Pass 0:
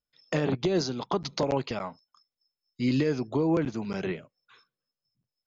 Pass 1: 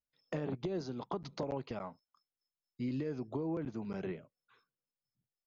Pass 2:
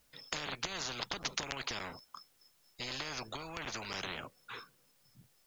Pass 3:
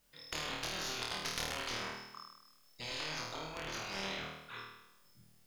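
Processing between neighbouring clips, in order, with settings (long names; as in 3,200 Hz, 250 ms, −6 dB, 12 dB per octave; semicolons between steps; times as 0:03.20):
high-shelf EQ 2,100 Hz −11 dB; downward compressor 4 to 1, threshold −27 dBFS, peak gain reduction 5.5 dB; level −6.5 dB
every bin compressed towards the loudest bin 10 to 1; level +8 dB
stylus tracing distortion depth 0.045 ms; flutter between parallel walls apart 4.4 metres, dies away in 0.89 s; level −4.5 dB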